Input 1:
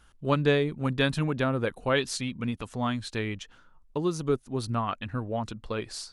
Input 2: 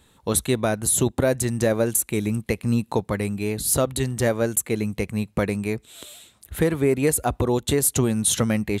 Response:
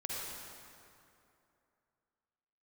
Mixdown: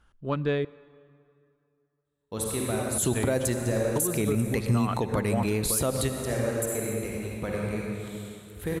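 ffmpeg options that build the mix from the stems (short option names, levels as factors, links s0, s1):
-filter_complex "[0:a]acontrast=74,highshelf=f=3100:g=-9.5,dynaudnorm=f=340:g=5:m=3.76,volume=0.299,asplit=3[s0][s1][s2];[s0]atrim=end=0.65,asetpts=PTS-STARTPTS,afade=t=out:st=0.646:d=0.004:c=hsin[s3];[s1]atrim=start=0.65:end=2.98,asetpts=PTS-STARTPTS,volume=0[s4];[s2]atrim=start=2.98,asetpts=PTS-STARTPTS,afade=t=in:d=0.004:c=hsin[s5];[s3][s4][s5]concat=n=3:v=0:a=1,asplit=3[s6][s7][s8];[s7]volume=0.0794[s9];[1:a]agate=range=0.0631:threshold=0.00316:ratio=16:detection=peak,adelay=2050,volume=1.33,asplit=2[s10][s11];[s11]volume=0.282[s12];[s8]apad=whole_len=478519[s13];[s10][s13]sidechaingate=range=0.0224:threshold=0.00501:ratio=16:detection=peak[s14];[2:a]atrim=start_sample=2205[s15];[s9][s12]amix=inputs=2:normalize=0[s16];[s16][s15]afir=irnorm=-1:irlink=0[s17];[s6][s14][s17]amix=inputs=3:normalize=0,alimiter=limit=0.158:level=0:latency=1:release=126"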